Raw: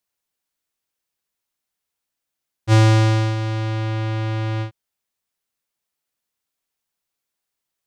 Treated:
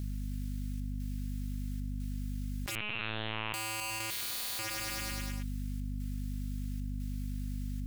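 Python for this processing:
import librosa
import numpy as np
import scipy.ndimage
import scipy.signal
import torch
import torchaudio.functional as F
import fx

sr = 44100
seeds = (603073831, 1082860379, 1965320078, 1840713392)

p1 = scipy.signal.sosfilt(scipy.signal.butter(4, 1400.0, 'highpass', fs=sr, output='sos'), x)
p2 = fx.spec_gate(p1, sr, threshold_db=-20, keep='strong')
p3 = fx.leveller(p2, sr, passes=3)
p4 = 10.0 ** (-28.5 / 20.0) * (np.abs((p3 / 10.0 ** (-28.5 / 20.0) + 3.0) % 4.0 - 2.0) - 1.0)
p5 = fx.chopper(p4, sr, hz=1.0, depth_pct=65, duty_pct=80)
p6 = fx.overflow_wrap(p5, sr, gain_db=31.0, at=(4.1, 4.59))
p7 = fx.add_hum(p6, sr, base_hz=50, snr_db=20)
p8 = p7 + fx.echo_feedback(p7, sr, ms=104, feedback_pct=59, wet_db=-11, dry=0)
p9 = fx.lpc_vocoder(p8, sr, seeds[0], excitation='pitch_kept', order=8, at=(2.75, 3.54))
y = fx.env_flatten(p9, sr, amount_pct=100)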